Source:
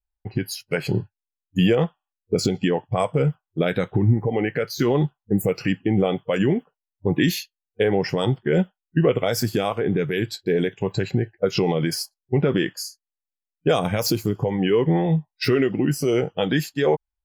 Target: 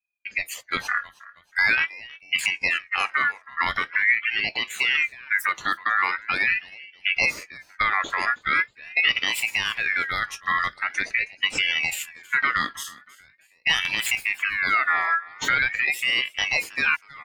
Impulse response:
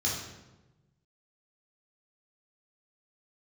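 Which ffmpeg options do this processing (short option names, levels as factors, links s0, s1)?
-filter_complex "[0:a]asettb=1/sr,asplit=3[s0][s1][s2];[s0]atrim=end=7.254[s3];[s1]atrim=start=7.25:end=8.1,asetpts=PTS-STARTPTS,afade=t=in:d=0.004:c=qsin,afade=t=out:st=0.846:d=0.004:c=qsin,acrossover=split=3000[s4][s5];[s5]acompressor=threshold=0.0141:ratio=4:attack=1:release=60[s6];[s4][s6]amix=inputs=2:normalize=0[s7];[s2]atrim=start=8.096[s8];[s3][s7]acrossfade=d=0.004:c1=hsin:c2=qsin[s9];[s9][s8]acrossfade=d=0.004:c1=qsin:c2=hsin,aecho=1:1:319|638|957:0.0944|0.034|0.0122,aeval=exprs='val(0)*sin(2*PI*2000*n/s+2000*0.25/0.43*sin(2*PI*0.43*n/s))':c=same"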